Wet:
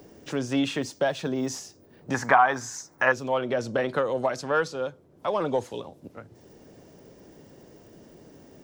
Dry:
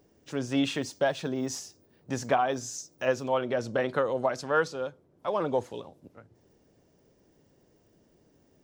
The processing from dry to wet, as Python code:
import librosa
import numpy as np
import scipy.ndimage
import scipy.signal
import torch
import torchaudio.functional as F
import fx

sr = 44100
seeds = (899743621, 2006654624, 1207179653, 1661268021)

p1 = 10.0 ** (-20.0 / 20.0) * np.tanh(x / 10.0 ** (-20.0 / 20.0))
p2 = x + (p1 * librosa.db_to_amplitude(-11.5))
p3 = fx.band_shelf(p2, sr, hz=1300.0, db=13.5, octaves=1.7, at=(2.14, 3.12))
y = fx.band_squash(p3, sr, depth_pct=40)